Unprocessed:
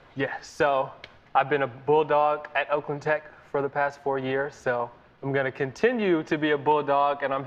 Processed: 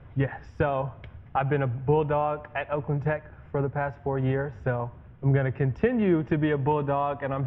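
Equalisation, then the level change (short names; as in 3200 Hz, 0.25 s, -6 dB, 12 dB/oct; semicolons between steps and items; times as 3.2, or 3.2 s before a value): polynomial smoothing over 25 samples; bell 87 Hz +14.5 dB 1.9 oct; low shelf 220 Hz +11 dB; -6.0 dB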